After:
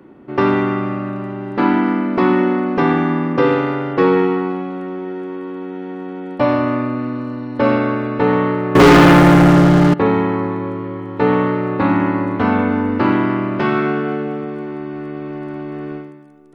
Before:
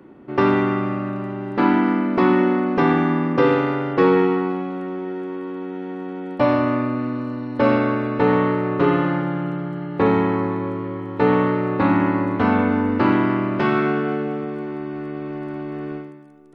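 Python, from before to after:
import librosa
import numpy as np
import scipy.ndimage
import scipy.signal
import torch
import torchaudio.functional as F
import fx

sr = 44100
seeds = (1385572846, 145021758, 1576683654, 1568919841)

y = fx.leveller(x, sr, passes=5, at=(8.75, 9.94))
y = F.gain(torch.from_numpy(y), 2.0).numpy()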